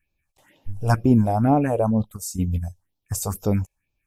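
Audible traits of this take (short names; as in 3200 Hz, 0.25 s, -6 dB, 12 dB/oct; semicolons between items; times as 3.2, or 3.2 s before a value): phasing stages 4, 2.1 Hz, lowest notch 230–1900 Hz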